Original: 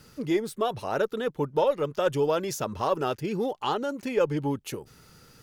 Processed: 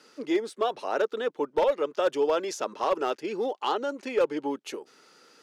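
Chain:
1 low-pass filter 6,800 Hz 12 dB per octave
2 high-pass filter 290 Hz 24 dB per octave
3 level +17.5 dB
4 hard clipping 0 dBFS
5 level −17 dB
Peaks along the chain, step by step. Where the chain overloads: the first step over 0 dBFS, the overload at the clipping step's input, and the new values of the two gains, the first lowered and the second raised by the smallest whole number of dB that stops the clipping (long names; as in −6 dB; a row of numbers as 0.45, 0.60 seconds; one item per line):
−11.5, −12.0, +5.5, 0.0, −17.0 dBFS
step 3, 5.5 dB
step 3 +11.5 dB, step 5 −11 dB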